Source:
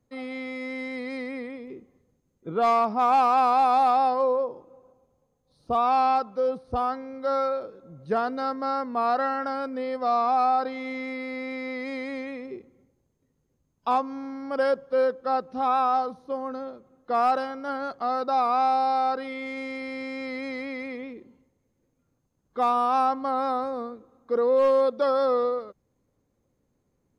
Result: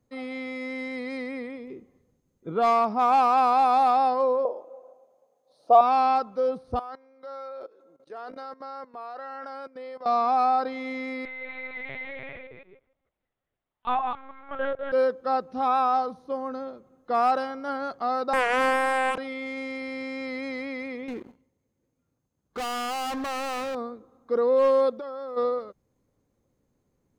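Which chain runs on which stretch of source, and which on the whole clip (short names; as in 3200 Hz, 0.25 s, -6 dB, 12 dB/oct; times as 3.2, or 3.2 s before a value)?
4.45–5.81 HPF 380 Hz + bell 630 Hz +14.5 dB 0.71 oct
6.79–10.06 HPF 320 Hz 24 dB/oct + level quantiser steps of 19 dB
11.25–14.92 reverse delay 0.153 s, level -4 dB + HPF 770 Hz + LPC vocoder at 8 kHz pitch kept
18.33–19.18 HPF 230 Hz 24 dB/oct + bell 4300 Hz +5 dB 0.32 oct + Doppler distortion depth 0.55 ms
21.08–23.75 HPF 42 Hz + sample leveller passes 2 + hard clip -29.5 dBFS
24.96–25.36 high shelf 4500 Hz -10.5 dB + compressor 10:1, threshold -33 dBFS + crackle 300/s -62 dBFS
whole clip: dry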